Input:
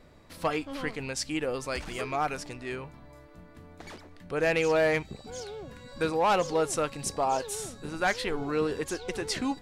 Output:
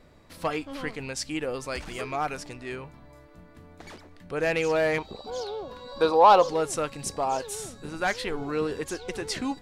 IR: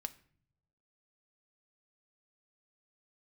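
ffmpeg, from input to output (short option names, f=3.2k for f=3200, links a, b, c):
-filter_complex "[0:a]asettb=1/sr,asplit=3[a][b][c];[a]atrim=end=4.984[d];[b]atrim=start=4.98:end=6.49,asetpts=PTS-STARTPTS,afade=t=in:d=0.004:c=qsin,afade=t=out:st=1.506:d=0.004:c=qsin,equalizer=f=125:t=o:w=1:g=-8,equalizer=f=500:t=o:w=1:g=6,equalizer=f=1k:t=o:w=1:g=11,equalizer=f=2k:t=o:w=1:g=-8,equalizer=f=4k:t=o:w=1:g=10,equalizer=f=8k:t=o:w=1:g=-8[e];[c]atrim=start=6.486[f];[d][e]acrossfade=d=0.004:c1=hsin:c2=qsin[g];[g][f]acrossfade=d=0.004:c1=qsin:c2=hsin"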